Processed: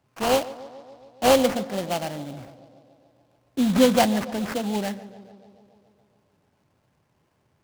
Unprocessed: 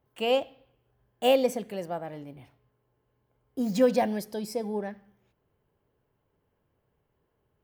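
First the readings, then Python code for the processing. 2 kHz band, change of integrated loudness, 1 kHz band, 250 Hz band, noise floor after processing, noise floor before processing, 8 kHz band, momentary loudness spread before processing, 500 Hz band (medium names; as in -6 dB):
+7.5 dB, +4.5 dB, +7.5 dB, +7.5 dB, -69 dBFS, -76 dBFS, +12.5 dB, 18 LU, +3.0 dB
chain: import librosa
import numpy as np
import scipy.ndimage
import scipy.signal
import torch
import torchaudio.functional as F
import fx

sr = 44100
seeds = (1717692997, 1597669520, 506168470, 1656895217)

p1 = scipy.signal.sosfilt(scipy.signal.butter(2, 94.0, 'highpass', fs=sr, output='sos'), x)
p2 = fx.peak_eq(p1, sr, hz=440.0, db=-9.5, octaves=0.46)
p3 = fx.rider(p2, sr, range_db=3, speed_s=2.0)
p4 = p2 + F.gain(torch.from_numpy(p3), 2.5).numpy()
p5 = fx.sample_hold(p4, sr, seeds[0], rate_hz=3700.0, jitter_pct=20)
p6 = p5 + fx.echo_tape(p5, sr, ms=142, feedback_pct=77, wet_db=-15, lp_hz=1600.0, drive_db=7.0, wow_cents=23, dry=0)
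y = fx.noise_mod_delay(p6, sr, seeds[1], noise_hz=3300.0, depth_ms=0.032)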